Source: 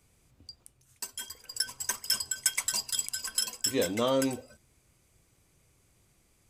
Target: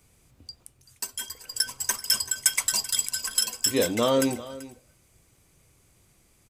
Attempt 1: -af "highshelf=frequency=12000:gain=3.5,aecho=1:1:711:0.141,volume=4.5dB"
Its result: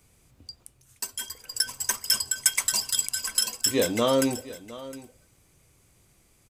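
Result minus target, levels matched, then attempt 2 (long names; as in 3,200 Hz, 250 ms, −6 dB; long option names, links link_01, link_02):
echo 326 ms late
-af "highshelf=frequency=12000:gain=3.5,aecho=1:1:385:0.141,volume=4.5dB"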